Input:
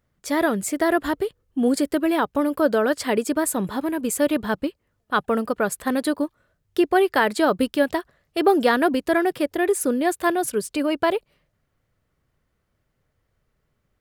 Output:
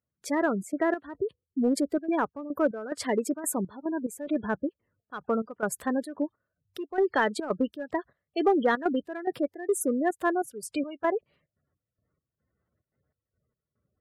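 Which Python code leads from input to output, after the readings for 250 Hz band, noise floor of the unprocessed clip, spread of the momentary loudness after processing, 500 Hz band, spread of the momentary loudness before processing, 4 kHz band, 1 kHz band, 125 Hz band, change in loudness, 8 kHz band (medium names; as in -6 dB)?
-6.5 dB, -73 dBFS, 9 LU, -7.0 dB, 7 LU, -11.5 dB, -7.0 dB, -6.0 dB, -7.0 dB, -7.0 dB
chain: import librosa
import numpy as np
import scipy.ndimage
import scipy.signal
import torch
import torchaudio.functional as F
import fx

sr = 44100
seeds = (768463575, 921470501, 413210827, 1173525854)

p1 = fx.spec_gate(x, sr, threshold_db=-20, keep='strong')
p2 = scipy.signal.sosfilt(scipy.signal.butter(4, 64.0, 'highpass', fs=sr, output='sos'), p1)
p3 = np.clip(p2, -10.0 ** (-15.0 / 20.0), 10.0 ** (-15.0 / 20.0))
p4 = p2 + F.gain(torch.from_numpy(p3), -8.0).numpy()
p5 = fx.step_gate(p4, sr, bpm=144, pattern='..xxxx.xx..xx', floor_db=-12.0, edge_ms=4.5)
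y = F.gain(torch.from_numpy(p5), -7.5).numpy()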